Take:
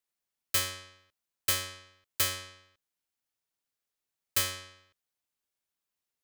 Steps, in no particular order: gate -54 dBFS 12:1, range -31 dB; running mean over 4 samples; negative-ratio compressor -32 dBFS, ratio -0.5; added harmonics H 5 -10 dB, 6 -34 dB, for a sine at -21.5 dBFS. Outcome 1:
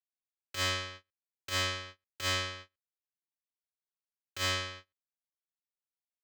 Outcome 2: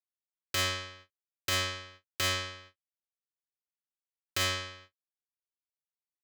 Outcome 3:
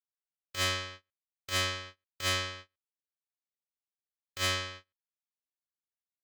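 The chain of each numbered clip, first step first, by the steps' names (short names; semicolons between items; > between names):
negative-ratio compressor > gate > added harmonics > running mean; running mean > negative-ratio compressor > added harmonics > gate; negative-ratio compressor > running mean > gate > added harmonics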